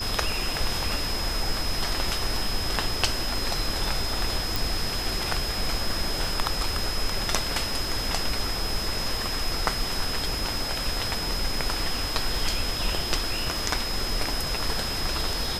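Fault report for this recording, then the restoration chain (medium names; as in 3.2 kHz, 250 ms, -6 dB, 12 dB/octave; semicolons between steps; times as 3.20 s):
crackle 24 per s -34 dBFS
whine 5.1 kHz -31 dBFS
4.56 s: pop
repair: de-click; band-stop 5.1 kHz, Q 30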